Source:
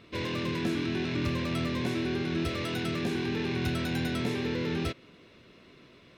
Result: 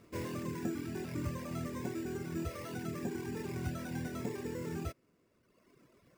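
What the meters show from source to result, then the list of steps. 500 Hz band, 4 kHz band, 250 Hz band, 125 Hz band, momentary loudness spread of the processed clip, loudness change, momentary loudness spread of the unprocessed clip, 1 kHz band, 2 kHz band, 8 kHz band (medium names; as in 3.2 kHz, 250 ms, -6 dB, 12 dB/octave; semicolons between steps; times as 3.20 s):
-8.0 dB, -17.0 dB, -8.5 dB, -7.5 dB, 2 LU, -8.5 dB, 2 LU, -7.5 dB, -12.5 dB, -3.0 dB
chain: reverb removal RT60 1.7 s; Bessel low-pass 1.6 kHz, order 2; careless resampling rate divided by 6×, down none, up hold; trim -4 dB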